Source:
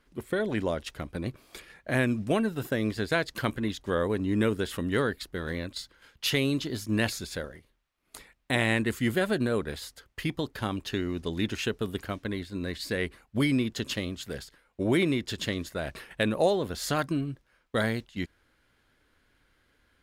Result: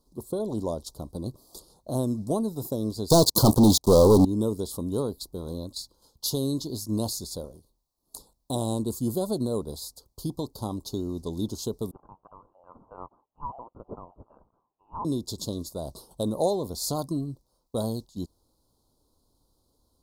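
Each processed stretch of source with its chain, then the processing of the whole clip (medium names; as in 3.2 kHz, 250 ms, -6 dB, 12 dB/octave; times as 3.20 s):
3.10–4.25 s: high-pass 48 Hz 24 dB/octave + waveshaping leveller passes 5
11.91–15.05 s: high-pass 1 kHz 24 dB/octave + frequency inversion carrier 3.2 kHz
whole clip: elliptic band-stop 1–4.2 kHz, stop band 60 dB; treble shelf 6.2 kHz +8.5 dB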